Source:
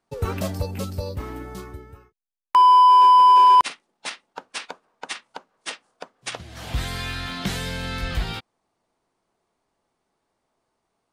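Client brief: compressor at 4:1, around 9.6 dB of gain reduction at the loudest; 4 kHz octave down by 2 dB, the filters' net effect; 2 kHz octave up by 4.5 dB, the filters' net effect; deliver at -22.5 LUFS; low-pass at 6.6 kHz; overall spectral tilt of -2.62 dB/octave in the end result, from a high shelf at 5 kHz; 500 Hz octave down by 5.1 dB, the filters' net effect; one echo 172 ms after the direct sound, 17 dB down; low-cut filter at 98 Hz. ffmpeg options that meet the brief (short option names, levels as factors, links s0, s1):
-af "highpass=98,lowpass=6600,equalizer=f=500:t=o:g=-6.5,equalizer=f=2000:t=o:g=7.5,equalizer=f=4000:t=o:g=-8,highshelf=f=5000:g=3.5,acompressor=threshold=0.0794:ratio=4,aecho=1:1:172:0.141,volume=1.68"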